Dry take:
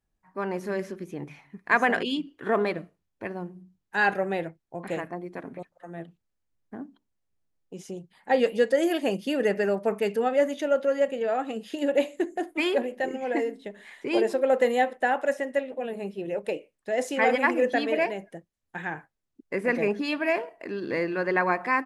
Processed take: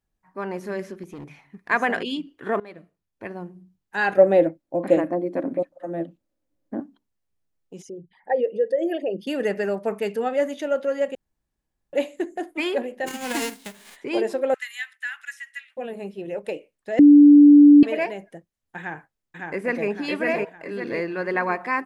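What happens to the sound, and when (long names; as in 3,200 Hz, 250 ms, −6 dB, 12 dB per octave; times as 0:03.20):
0:01.03–0:01.70: hard clipping −33 dBFS
0:02.60–0:03.31: fade in, from −21.5 dB
0:04.17–0:06.80: hollow resonant body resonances 300/540 Hz, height 18 dB, ringing for 40 ms
0:07.82–0:09.27: spectral envelope exaggerated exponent 2
0:11.15–0:11.93: fill with room tone
0:13.06–0:13.95: spectral envelope flattened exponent 0.3
0:14.54–0:15.77: Butterworth high-pass 1,500 Hz
0:16.99–0:17.83: beep over 291 Hz −6.5 dBFS
0:18.78–0:19.88: delay throw 560 ms, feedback 45%, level −2 dB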